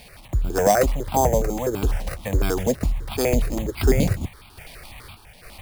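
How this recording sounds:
a quantiser's noise floor 8 bits, dither none
sample-and-hold tremolo
aliases and images of a low sample rate 6,900 Hz, jitter 0%
notches that jump at a steady rate 12 Hz 350–1,800 Hz

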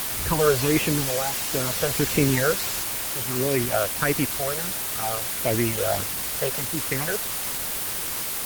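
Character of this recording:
tremolo triangle 0.56 Hz, depth 80%
phaser sweep stages 8, 1.5 Hz, lowest notch 260–1,300 Hz
a quantiser's noise floor 6 bits, dither triangular
Opus

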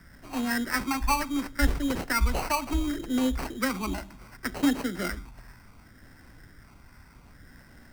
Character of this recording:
phaser sweep stages 12, 0.68 Hz, lowest notch 470–1,100 Hz
aliases and images of a low sample rate 3,500 Hz, jitter 0%

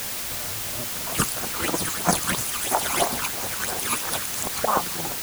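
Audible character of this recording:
tremolo triangle 4.4 Hz, depth 60%
phaser sweep stages 12, 3 Hz, lowest notch 550–3,800 Hz
a quantiser's noise floor 6 bits, dither triangular

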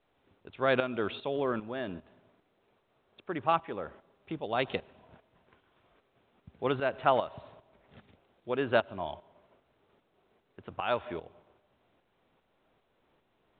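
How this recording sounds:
tremolo saw up 2.5 Hz, depth 70%
mu-law

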